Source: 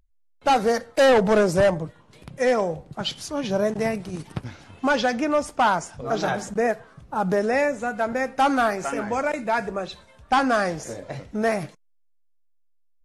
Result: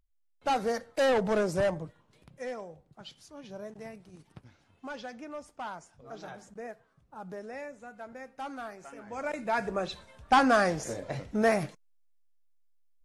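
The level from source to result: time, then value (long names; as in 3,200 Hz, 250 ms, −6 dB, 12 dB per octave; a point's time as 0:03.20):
0:01.85 −9 dB
0:02.67 −19.5 dB
0:09.03 −19.5 dB
0:09.25 −9.5 dB
0:09.85 −2 dB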